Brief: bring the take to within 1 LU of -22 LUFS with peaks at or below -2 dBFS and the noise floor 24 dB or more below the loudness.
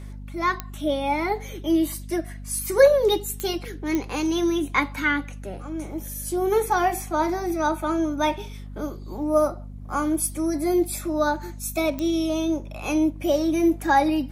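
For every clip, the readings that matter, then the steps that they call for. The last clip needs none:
clicks found 4; hum 50 Hz; highest harmonic 250 Hz; hum level -35 dBFS; loudness -24.0 LUFS; peak level -4.5 dBFS; loudness target -22.0 LUFS
-> de-click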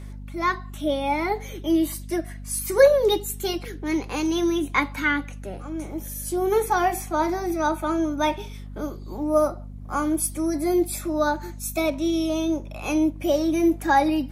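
clicks found 0; hum 50 Hz; highest harmonic 250 Hz; hum level -35 dBFS
-> de-hum 50 Hz, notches 5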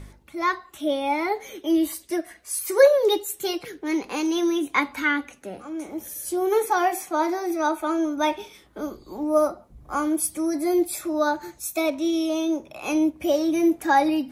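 hum not found; loudness -24.0 LUFS; peak level -4.5 dBFS; loudness target -22.0 LUFS
-> trim +2 dB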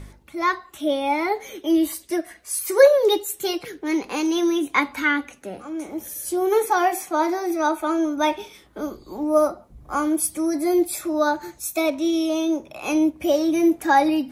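loudness -22.0 LUFS; peak level -2.5 dBFS; noise floor -51 dBFS

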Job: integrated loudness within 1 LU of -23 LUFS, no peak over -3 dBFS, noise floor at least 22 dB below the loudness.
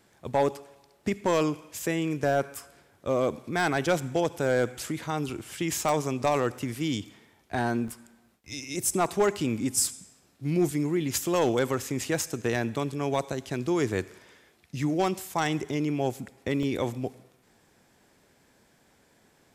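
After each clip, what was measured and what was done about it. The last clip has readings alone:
clipped samples 0.3%; clipping level -16.0 dBFS; dropouts 4; longest dropout 2.3 ms; loudness -28.5 LUFS; peak level -16.0 dBFS; loudness target -23.0 LUFS
-> clip repair -16 dBFS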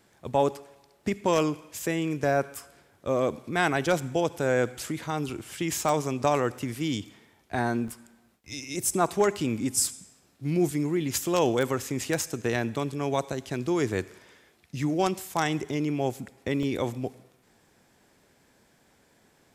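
clipped samples 0.0%; dropouts 4; longest dropout 2.3 ms
-> interpolate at 5.89/7.88/12.04/16.63 s, 2.3 ms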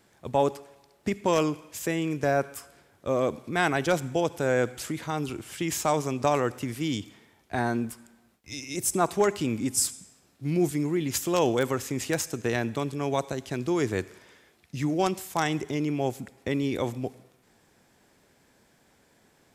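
dropouts 0; loudness -28.0 LUFS; peak level -7.0 dBFS; loudness target -23.0 LUFS
-> trim +5 dB; peak limiter -3 dBFS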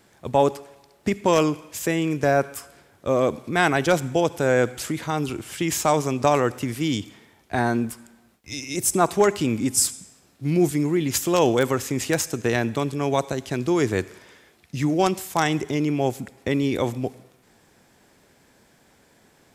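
loudness -23.0 LUFS; peak level -3.0 dBFS; noise floor -59 dBFS

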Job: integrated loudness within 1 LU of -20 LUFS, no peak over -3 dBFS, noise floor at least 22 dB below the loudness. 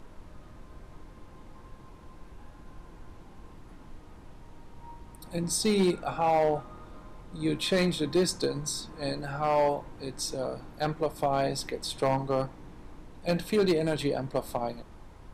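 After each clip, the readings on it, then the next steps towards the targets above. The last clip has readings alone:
clipped samples 0.6%; clipping level -18.5 dBFS; noise floor -50 dBFS; noise floor target -52 dBFS; loudness -29.5 LUFS; peak level -18.5 dBFS; loudness target -20.0 LUFS
-> clip repair -18.5 dBFS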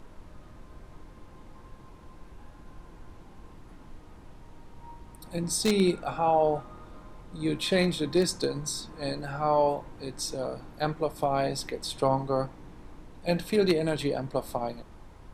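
clipped samples 0.0%; noise floor -50 dBFS; noise floor target -51 dBFS
-> noise print and reduce 6 dB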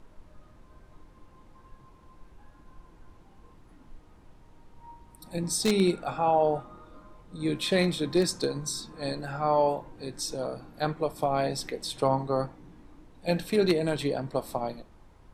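noise floor -55 dBFS; loudness -28.5 LUFS; peak level -9.5 dBFS; loudness target -20.0 LUFS
-> trim +8.5 dB; peak limiter -3 dBFS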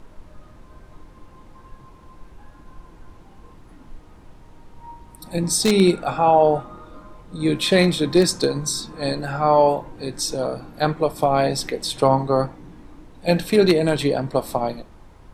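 loudness -20.0 LUFS; peak level -3.0 dBFS; noise floor -47 dBFS

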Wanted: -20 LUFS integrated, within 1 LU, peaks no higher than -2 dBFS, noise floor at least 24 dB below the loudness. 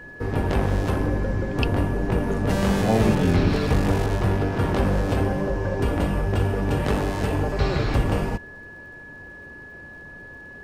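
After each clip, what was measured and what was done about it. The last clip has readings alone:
tick rate 43 per s; steady tone 1.7 kHz; tone level -40 dBFS; loudness -23.5 LUFS; peak level -7.0 dBFS; loudness target -20.0 LUFS
-> de-click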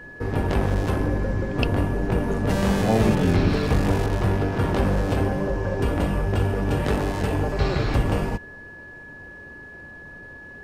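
tick rate 0.47 per s; steady tone 1.7 kHz; tone level -40 dBFS
-> band-stop 1.7 kHz, Q 30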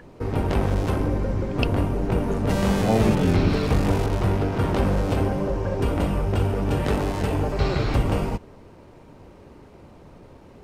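steady tone not found; loudness -23.5 LUFS; peak level -7.0 dBFS; loudness target -20.0 LUFS
-> trim +3.5 dB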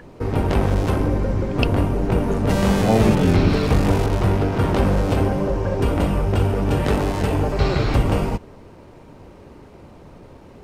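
loudness -20.0 LUFS; peak level -3.5 dBFS; noise floor -44 dBFS

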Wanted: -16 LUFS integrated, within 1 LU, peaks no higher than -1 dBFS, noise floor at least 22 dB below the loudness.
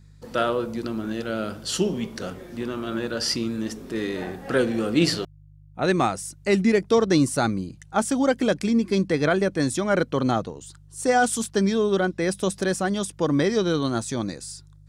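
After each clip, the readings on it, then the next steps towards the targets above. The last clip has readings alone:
hum 50 Hz; highest harmonic 150 Hz; hum level -46 dBFS; loudness -24.0 LUFS; peak level -8.0 dBFS; loudness target -16.0 LUFS
-> de-hum 50 Hz, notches 3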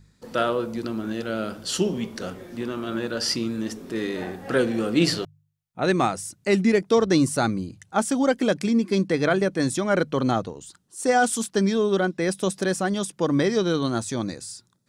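hum not found; loudness -24.0 LUFS; peak level -8.0 dBFS; loudness target -16.0 LUFS
-> trim +8 dB; peak limiter -1 dBFS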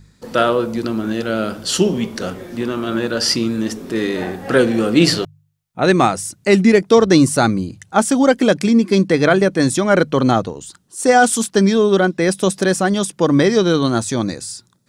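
loudness -16.0 LUFS; peak level -1.0 dBFS; noise floor -56 dBFS

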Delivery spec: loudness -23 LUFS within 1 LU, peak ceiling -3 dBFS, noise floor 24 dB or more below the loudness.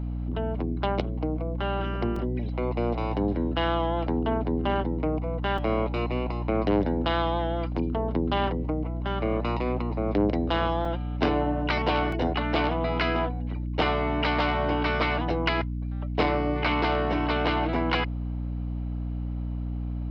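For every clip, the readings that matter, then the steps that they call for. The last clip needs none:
dropouts 5; longest dropout 3.7 ms; hum 60 Hz; highest harmonic 300 Hz; hum level -28 dBFS; loudness -27.5 LUFS; peak level -9.5 dBFS; loudness target -23.0 LUFS
-> interpolate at 2.16/5.58/10.85/12.12/13.81 s, 3.7 ms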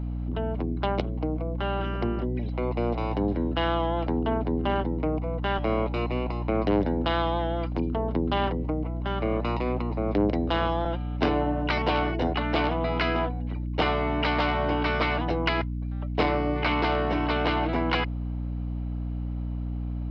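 dropouts 0; hum 60 Hz; highest harmonic 300 Hz; hum level -28 dBFS
-> hum notches 60/120/180/240/300 Hz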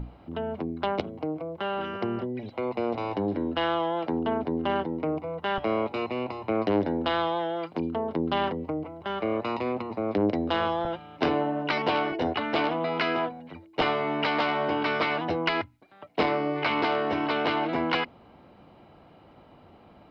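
hum not found; loudness -28.5 LUFS; peak level -11.5 dBFS; loudness target -23.0 LUFS
-> trim +5.5 dB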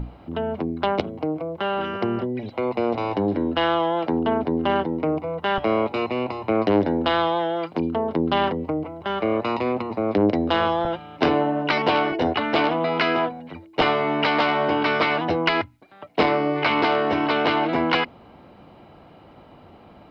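loudness -23.0 LUFS; peak level -6.0 dBFS; noise floor -48 dBFS

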